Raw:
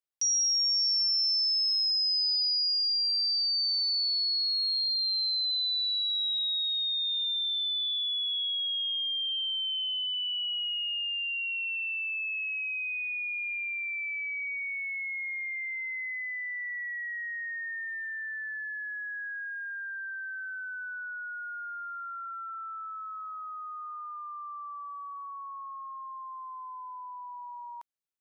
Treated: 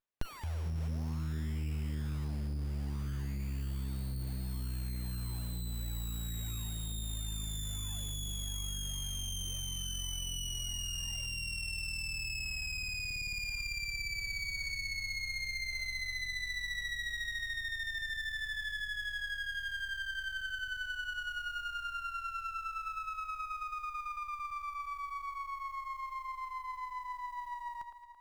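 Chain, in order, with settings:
floating-point word with a short mantissa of 4 bits
delay that swaps between a low-pass and a high-pass 111 ms, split 2,100 Hz, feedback 70%, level −6 dB
windowed peak hold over 9 samples

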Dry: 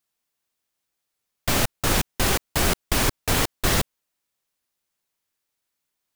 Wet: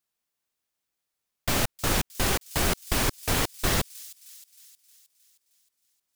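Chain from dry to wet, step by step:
delay with a high-pass on its return 312 ms, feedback 57%, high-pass 5,500 Hz, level −13 dB
level −3.5 dB

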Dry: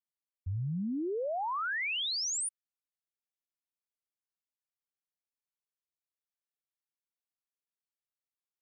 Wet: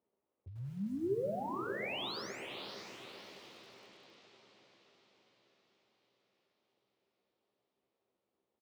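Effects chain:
spectral tilt +2.5 dB per octave
spring reverb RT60 1.2 s, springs 52 ms, chirp 30 ms, DRR 14 dB
reversed playback
downward compressor, threshold −42 dBFS, peak gain reduction 15.5 dB
reversed playback
brickwall limiter −41.5 dBFS, peak gain reduction 9 dB
upward compression, threshold −59 dBFS
surface crackle 180 per second −68 dBFS
low-pass that shuts in the quiet parts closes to 580 Hz, open at −46 dBFS
loudspeaker in its box 100–4,300 Hz, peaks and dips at 150 Hz −4 dB, 210 Hz +4 dB, 380 Hz +9 dB, 540 Hz +5 dB, 1,600 Hz −6 dB
double-tracking delay 15 ms −6.5 dB
on a send: feedback delay with all-pass diffusion 572 ms, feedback 52%, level −6 dB
on the sum: feedback echo at a low word length 91 ms, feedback 35%, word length 10 bits, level −10 dB
level +4 dB

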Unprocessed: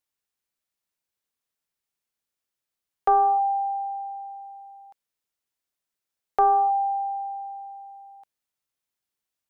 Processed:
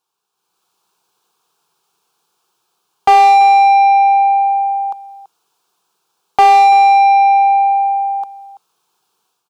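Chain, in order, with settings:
automatic gain control gain up to 11 dB
phaser with its sweep stopped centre 390 Hz, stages 8
mid-hump overdrive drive 29 dB, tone 1,400 Hz, clips at −1 dBFS
single-tap delay 333 ms −17 dB

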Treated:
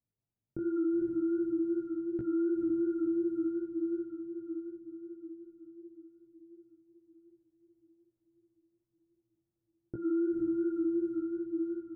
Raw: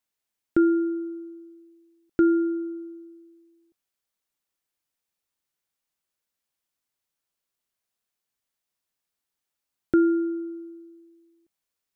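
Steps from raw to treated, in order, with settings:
parametric band 120 Hz +15 dB 0.71 octaves
compressor whose output falls as the input rises −23 dBFS, ratio −0.5
feedback delay with all-pass diffusion 500 ms, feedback 58%, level −4.5 dB
low-pass that shuts in the quiet parts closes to 610 Hz, open at −26 dBFS
chorus effect 2.7 Hz, delay 16 ms, depth 6 ms
brickwall limiter −26.5 dBFS, peak gain reduction 9.5 dB
low-shelf EQ 490 Hz +10.5 dB
hum removal 90.64 Hz, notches 13
level −5.5 dB

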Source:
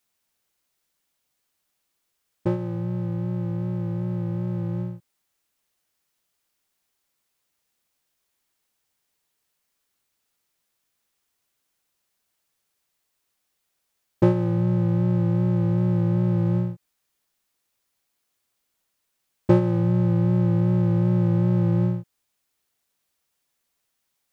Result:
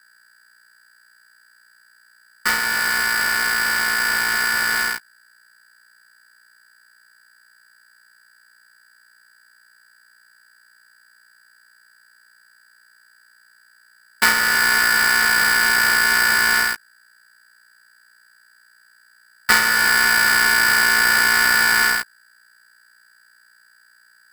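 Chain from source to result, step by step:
samples sorted by size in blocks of 64 samples
low-shelf EQ 180 Hz +8.5 dB
in parallel at −6.5 dB: fuzz pedal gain 33 dB, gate −38 dBFS
on the sum: mains hum 60 Hz, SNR 32 dB
ring modulator with a square carrier 1,600 Hz
level −4 dB

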